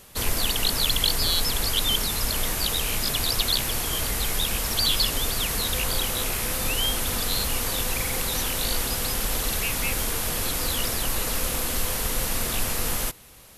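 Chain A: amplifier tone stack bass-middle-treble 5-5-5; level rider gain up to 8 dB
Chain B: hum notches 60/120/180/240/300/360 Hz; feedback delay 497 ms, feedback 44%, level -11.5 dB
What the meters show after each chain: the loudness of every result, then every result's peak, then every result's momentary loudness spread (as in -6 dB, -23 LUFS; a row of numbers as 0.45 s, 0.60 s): -23.0 LUFS, -24.0 LUFS; -8.5 dBFS, -8.0 dBFS; 4 LU, 4 LU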